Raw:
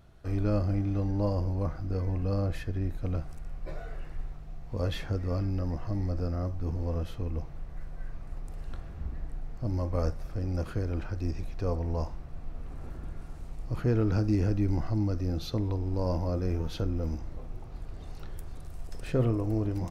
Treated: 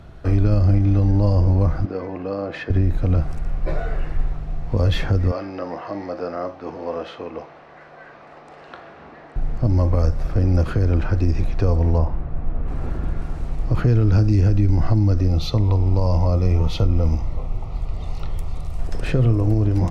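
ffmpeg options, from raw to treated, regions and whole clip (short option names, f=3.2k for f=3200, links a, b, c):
-filter_complex "[0:a]asettb=1/sr,asplit=3[a][b][c];[a]atrim=end=1.854[d];[b]atrim=start=1.85:end=2.7,asetpts=PTS-STARTPTS,afade=t=in:d=0.004:c=qsin,afade=t=out:st=0.846:d=0.004:c=qsin,acompressor=threshold=-30dB:ratio=3:attack=3.2:release=140:knee=1:detection=peak,highpass=310,lowpass=4.4k[e];[c]atrim=start=2.696[f];[d][e]acrossfade=d=0.004:c1=hsin:c2=qsin[g];[g][f]acrossfade=d=0.004:c1=qsin:c2=hsin,asettb=1/sr,asplit=3[h][i][j];[h]atrim=end=5.314[k];[i]atrim=start=5.31:end=9.36,asetpts=PTS-STARTPTS,afade=t=in:d=0.004:c=qsin,afade=t=out:st=4.046:d=0.004:c=qsin,highpass=500,lowpass=4.6k,asplit=2[l][m];[m]adelay=40,volume=-13dB[n];[l][n]amix=inputs=2:normalize=0,atrim=end_sample=178605[o];[j]atrim=start=9.356[p];[k][o]acrossfade=d=0.004:c1=hsin:c2=qsin[q];[q][p]acrossfade=d=0.004:c1=qsin:c2=hsin,asettb=1/sr,asplit=3[r][s][t];[r]atrim=end=11.984[u];[s]atrim=start=11.98:end=12.68,asetpts=PTS-STARTPTS,afade=t=in:d=0.004:c=qsin,afade=t=out:st=0.696:d=0.004:c=qsin,lowpass=f=3.9k:p=1,aemphasis=mode=reproduction:type=75kf[v];[t]atrim=start=12.676[w];[u][v]acrossfade=d=0.004:c1=hsin:c2=qsin[x];[x][w]acrossfade=d=0.004:c1=qsin:c2=hsin,asettb=1/sr,asplit=3[y][z][aa];[y]atrim=end=15.284[ab];[z]atrim=start=15.28:end=18.79,asetpts=PTS-STARTPTS,afade=t=in:d=0.004:c=qsin,afade=t=out:st=3.506:d=0.004:c=qsin,asuperstop=centerf=1600:order=4:qfactor=3.2,equalizer=f=310:w=1:g=-8[ac];[aa]atrim=start=18.786[ad];[ab][ac]acrossfade=d=0.004:c1=hsin:c2=qsin[ae];[ae][ad]acrossfade=d=0.004:c1=qsin:c2=hsin,aemphasis=mode=reproduction:type=50kf,acrossover=split=130|3000[af][ag][ah];[ag]acompressor=threshold=-35dB:ratio=6[ai];[af][ai][ah]amix=inputs=3:normalize=0,alimiter=level_in=22.5dB:limit=-1dB:release=50:level=0:latency=1,volume=-7.5dB"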